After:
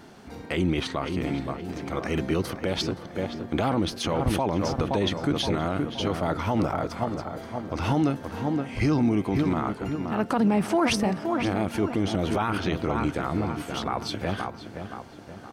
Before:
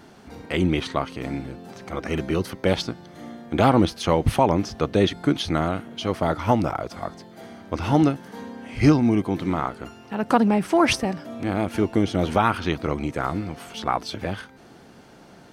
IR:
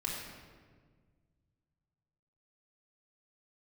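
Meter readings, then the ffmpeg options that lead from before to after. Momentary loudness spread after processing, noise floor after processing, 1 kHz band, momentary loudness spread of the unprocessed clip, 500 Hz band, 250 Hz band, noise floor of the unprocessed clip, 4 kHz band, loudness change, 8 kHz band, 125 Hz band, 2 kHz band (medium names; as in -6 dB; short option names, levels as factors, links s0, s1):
10 LU, -43 dBFS, -4.5 dB, 16 LU, -3.5 dB, -2.5 dB, -48 dBFS, -1.5 dB, -3.5 dB, -1.5 dB, -2.5 dB, -3.0 dB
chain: -filter_complex "[0:a]asplit=2[s0][s1];[s1]adelay=522,lowpass=f=2300:p=1,volume=0.355,asplit=2[s2][s3];[s3]adelay=522,lowpass=f=2300:p=1,volume=0.49,asplit=2[s4][s5];[s5]adelay=522,lowpass=f=2300:p=1,volume=0.49,asplit=2[s6][s7];[s7]adelay=522,lowpass=f=2300:p=1,volume=0.49,asplit=2[s8][s9];[s9]adelay=522,lowpass=f=2300:p=1,volume=0.49,asplit=2[s10][s11];[s11]adelay=522,lowpass=f=2300:p=1,volume=0.49[s12];[s0][s2][s4][s6][s8][s10][s12]amix=inputs=7:normalize=0,alimiter=limit=0.178:level=0:latency=1:release=27"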